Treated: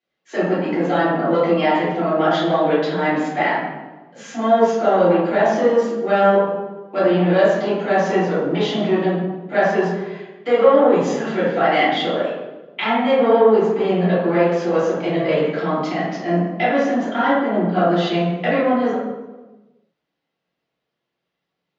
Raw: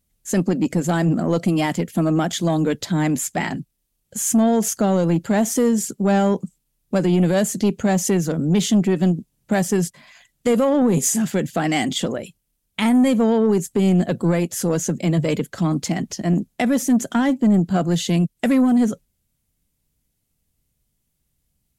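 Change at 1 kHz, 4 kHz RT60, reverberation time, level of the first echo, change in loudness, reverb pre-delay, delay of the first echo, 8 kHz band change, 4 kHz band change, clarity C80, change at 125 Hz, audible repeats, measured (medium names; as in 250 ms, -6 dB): +8.0 dB, 0.75 s, 1.2 s, no echo, +1.5 dB, 3 ms, no echo, under -15 dB, +1.5 dB, 2.5 dB, -4.5 dB, no echo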